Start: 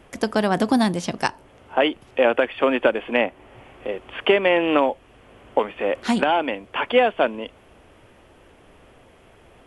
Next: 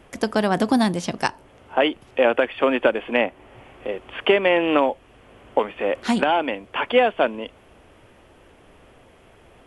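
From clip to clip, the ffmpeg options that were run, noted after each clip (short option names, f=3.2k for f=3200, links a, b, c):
-af anull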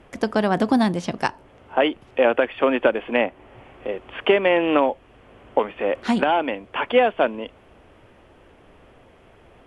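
-af "aemphasis=mode=reproduction:type=cd"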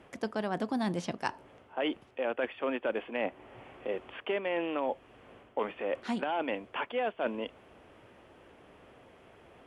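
-af "highpass=f=130:p=1,areverse,acompressor=threshold=-25dB:ratio=6,areverse,volume=-4dB"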